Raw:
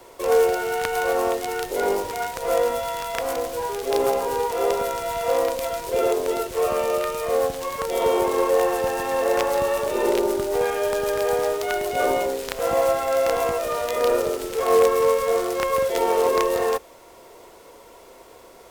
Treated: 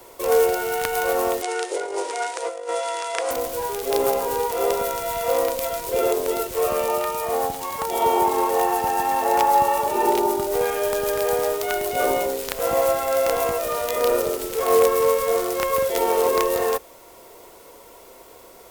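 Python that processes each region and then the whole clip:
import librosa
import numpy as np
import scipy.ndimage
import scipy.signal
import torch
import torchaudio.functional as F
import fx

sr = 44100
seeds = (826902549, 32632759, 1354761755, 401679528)

y = fx.chain(x, sr, fx.cheby1_bandpass(low_hz=320.0, high_hz=9500.0, order=5),
    fx.over_compress(threshold_db=-25.0, ratio=-0.5), at=(1.42, 3.31))
y = fx.chain(y, sr, fx.peak_eq(hz=860.0, db=14.5, octaves=0.23),
    fx.notch_comb(f0_hz=520.0), at=(6.88, 10.47))
y = fx.high_shelf(y, sr, hz=11000.0, db=12.0)
y = fx.notch(y, sr, hz=1700.0, q=30.0)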